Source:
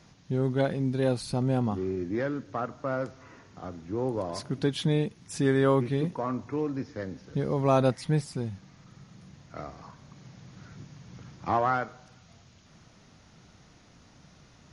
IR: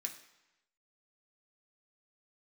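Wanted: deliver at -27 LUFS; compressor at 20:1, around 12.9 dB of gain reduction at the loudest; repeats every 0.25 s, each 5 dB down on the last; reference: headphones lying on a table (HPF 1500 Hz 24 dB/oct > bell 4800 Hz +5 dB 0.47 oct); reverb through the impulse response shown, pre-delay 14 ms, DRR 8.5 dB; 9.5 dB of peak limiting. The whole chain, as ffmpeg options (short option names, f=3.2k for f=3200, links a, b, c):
-filter_complex "[0:a]acompressor=threshold=-31dB:ratio=20,alimiter=level_in=5.5dB:limit=-24dB:level=0:latency=1,volume=-5.5dB,aecho=1:1:250|500|750|1000|1250|1500|1750:0.562|0.315|0.176|0.0988|0.0553|0.031|0.0173,asplit=2[a][b];[1:a]atrim=start_sample=2205,adelay=14[c];[b][c]afir=irnorm=-1:irlink=0,volume=-6.5dB[d];[a][d]amix=inputs=2:normalize=0,highpass=f=1.5k:w=0.5412,highpass=f=1.5k:w=1.3066,equalizer=f=4.8k:t=o:w=0.47:g=5,volume=21dB"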